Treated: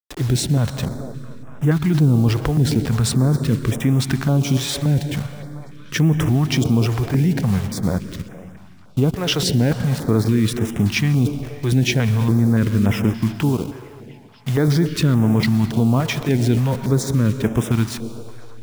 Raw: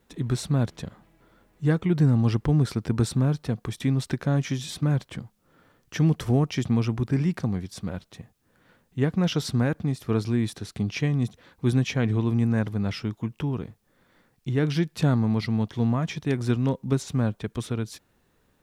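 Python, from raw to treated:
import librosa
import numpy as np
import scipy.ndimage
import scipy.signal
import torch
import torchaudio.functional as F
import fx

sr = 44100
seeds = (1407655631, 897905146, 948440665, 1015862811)

p1 = fx.delta_hold(x, sr, step_db=-40.5)
p2 = fx.low_shelf(p1, sr, hz=140.0, db=-7.5, at=(13.37, 14.68))
p3 = fx.echo_stepped(p2, sr, ms=235, hz=320.0, octaves=0.7, feedback_pct=70, wet_db=-11.0)
p4 = fx.rev_plate(p3, sr, seeds[0], rt60_s=2.5, hf_ratio=0.8, predelay_ms=105, drr_db=13.5)
p5 = fx.over_compress(p4, sr, threshold_db=-26.0, ratio=-0.5)
p6 = p4 + F.gain(torch.from_numpy(p5), -0.5).numpy()
p7 = fx.filter_held_notch(p6, sr, hz=3.5, low_hz=210.0, high_hz=4300.0)
y = F.gain(torch.from_numpy(p7), 4.0).numpy()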